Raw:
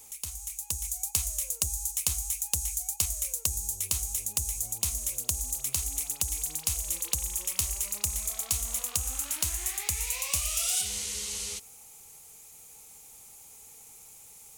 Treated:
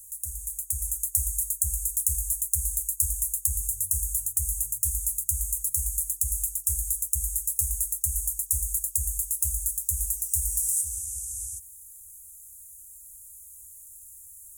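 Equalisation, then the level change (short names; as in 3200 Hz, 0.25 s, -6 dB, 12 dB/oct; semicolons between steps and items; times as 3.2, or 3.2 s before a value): inverse Chebyshev band-stop 170–4400 Hz, stop band 40 dB; bell 1200 Hz -9.5 dB 0.97 oct; +5.5 dB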